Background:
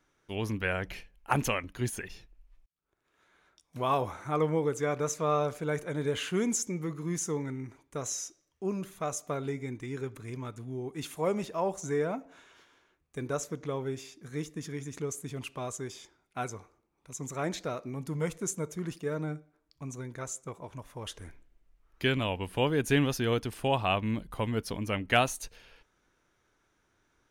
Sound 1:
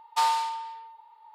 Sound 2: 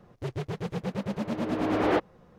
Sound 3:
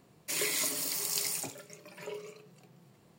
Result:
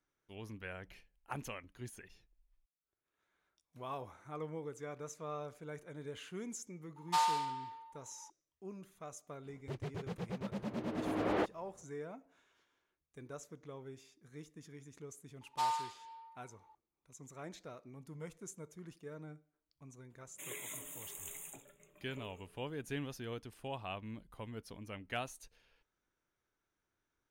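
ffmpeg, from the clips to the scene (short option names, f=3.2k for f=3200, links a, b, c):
-filter_complex "[1:a]asplit=2[a][b];[0:a]volume=-15dB[c];[b]asplit=2[d][e];[e]adelay=6.6,afreqshift=1.7[f];[d][f]amix=inputs=2:normalize=1[g];[3:a]asuperstop=centerf=4900:order=12:qfactor=1.9[h];[a]atrim=end=1.34,asetpts=PTS-STARTPTS,volume=-7dB,afade=t=in:d=0.004:c=hsin,afade=t=out:st=1.336:d=0.004:c=hsin,adelay=6960[i];[2:a]atrim=end=2.38,asetpts=PTS-STARTPTS,volume=-9dB,afade=t=in:d=0.004:c=hsin,afade=t=out:st=2.376:d=0.004:c=hsin,adelay=417186S[j];[g]atrim=end=1.34,asetpts=PTS-STARTPTS,volume=-9.5dB,afade=t=in:d=0.004:c=hsin,afade=t=out:st=1.336:d=0.004:c=hsin,adelay=15410[k];[h]atrim=end=3.18,asetpts=PTS-STARTPTS,volume=-13.5dB,afade=t=in:d=0.004:c=hsin,afade=t=out:st=3.176:d=0.004:c=hsin,adelay=20100[l];[c][i][j][k][l]amix=inputs=5:normalize=0"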